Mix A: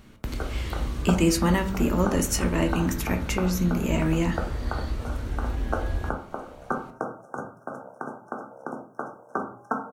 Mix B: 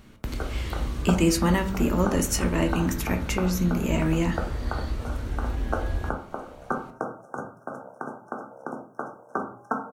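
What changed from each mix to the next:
no change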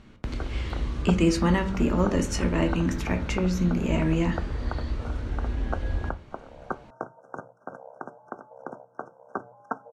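first sound: send off; master: add distance through air 85 m

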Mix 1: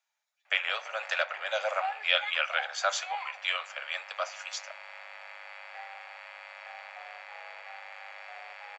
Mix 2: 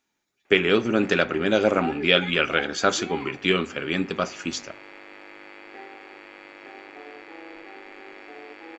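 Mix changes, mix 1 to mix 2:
speech +5.5 dB; master: remove steep high-pass 570 Hz 72 dB/octave

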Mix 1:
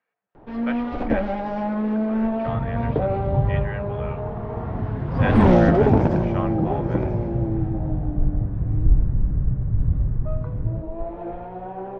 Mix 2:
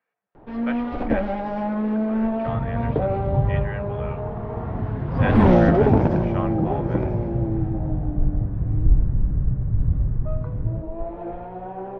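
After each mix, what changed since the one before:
master: add distance through air 59 m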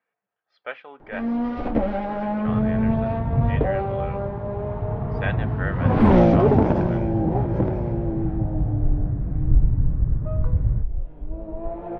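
first sound: entry +0.65 s

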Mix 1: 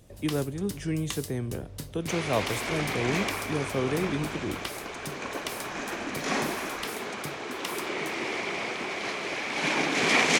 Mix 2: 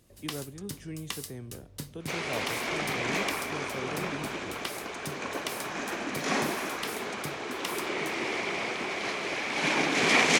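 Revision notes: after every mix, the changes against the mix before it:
speech -10.0 dB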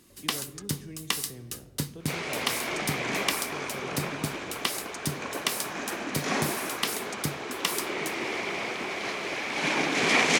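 speech -7.0 dB; first sound +8.0 dB; reverb: on, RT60 1.2 s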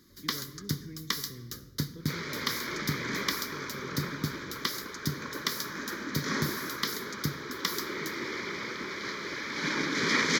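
first sound: send +11.0 dB; master: add static phaser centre 2.7 kHz, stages 6

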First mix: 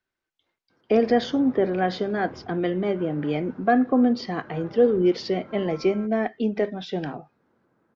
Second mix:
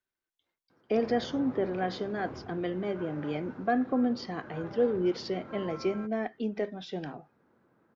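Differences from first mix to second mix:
speech -8.0 dB; master: remove distance through air 55 m

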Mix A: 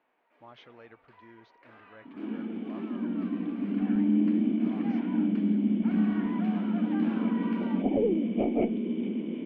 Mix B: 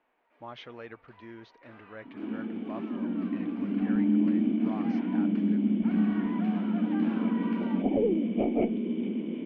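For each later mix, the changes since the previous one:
speech +8.0 dB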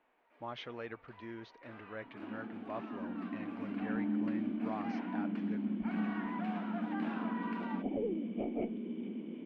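second sound -10.0 dB

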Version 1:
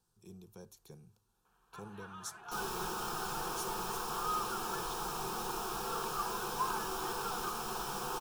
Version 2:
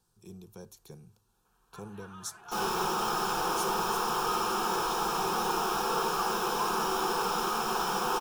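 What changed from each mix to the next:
speech +5.0 dB; second sound: send +10.5 dB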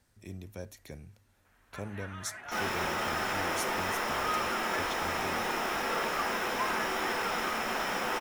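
second sound -5.5 dB; master: remove static phaser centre 400 Hz, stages 8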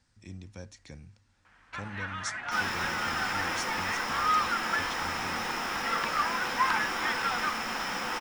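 speech: add steep low-pass 8.7 kHz; first sound +8.5 dB; master: add graphic EQ with 31 bands 400 Hz -9 dB, 630 Hz -8 dB, 5 kHz +5 dB, 12.5 kHz -8 dB

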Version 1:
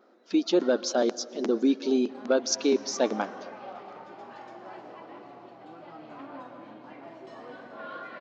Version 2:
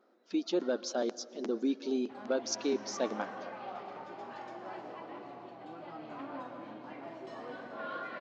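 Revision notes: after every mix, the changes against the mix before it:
speech -8.0 dB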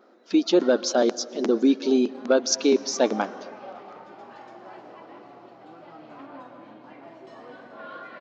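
speech +12.0 dB

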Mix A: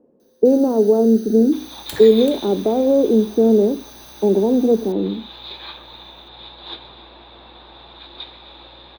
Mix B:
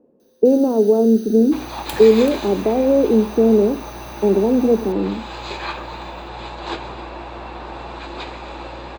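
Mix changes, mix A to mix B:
second sound: remove four-pole ladder low-pass 3.8 kHz, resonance 85%; master: add peaking EQ 2.7 kHz +5 dB 0.22 oct

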